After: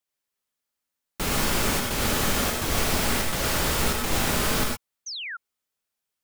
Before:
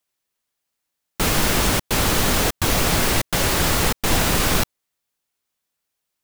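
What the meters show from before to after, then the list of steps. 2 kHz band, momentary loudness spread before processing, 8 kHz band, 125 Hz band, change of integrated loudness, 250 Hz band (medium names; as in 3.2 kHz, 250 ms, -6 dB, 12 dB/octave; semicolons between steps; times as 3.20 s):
-4.5 dB, 3 LU, -5.0 dB, -6.5 dB, -5.5 dB, -5.0 dB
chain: gated-style reverb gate 140 ms rising, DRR -0.5 dB; painted sound fall, 5.06–5.37 s, 1.3–6.5 kHz -26 dBFS; trim -8 dB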